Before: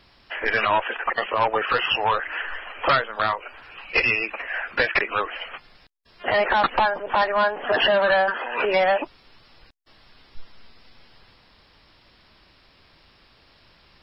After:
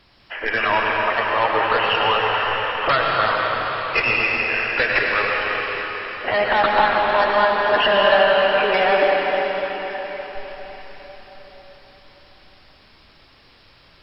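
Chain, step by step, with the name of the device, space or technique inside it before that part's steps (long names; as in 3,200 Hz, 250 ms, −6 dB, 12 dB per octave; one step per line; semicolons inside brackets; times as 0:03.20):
cathedral (convolution reverb RT60 5.0 s, pre-delay 87 ms, DRR −2.5 dB)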